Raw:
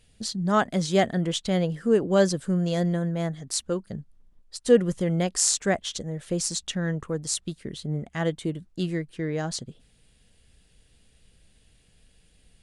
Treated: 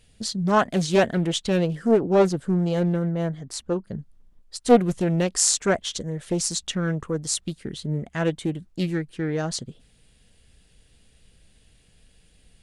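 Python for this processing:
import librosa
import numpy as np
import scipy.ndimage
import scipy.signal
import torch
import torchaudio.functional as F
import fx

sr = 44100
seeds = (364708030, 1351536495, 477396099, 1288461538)

y = fx.high_shelf(x, sr, hz=2800.0, db=-9.5, at=(1.91, 3.99))
y = fx.doppler_dist(y, sr, depth_ms=0.36)
y = y * librosa.db_to_amplitude(2.5)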